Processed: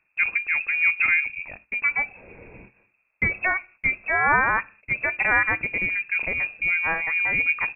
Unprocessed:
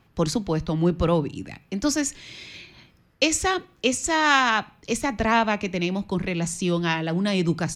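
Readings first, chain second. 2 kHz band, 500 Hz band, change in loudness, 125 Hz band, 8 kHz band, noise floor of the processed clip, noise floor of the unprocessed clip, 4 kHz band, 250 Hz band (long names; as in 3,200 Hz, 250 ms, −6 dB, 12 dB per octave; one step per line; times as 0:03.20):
+7.5 dB, −11.0 dB, +1.5 dB, −13.5 dB, below −40 dB, −71 dBFS, −60 dBFS, below −15 dB, −17.0 dB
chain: voice inversion scrambler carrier 2,600 Hz
noise gate −47 dBFS, range −11 dB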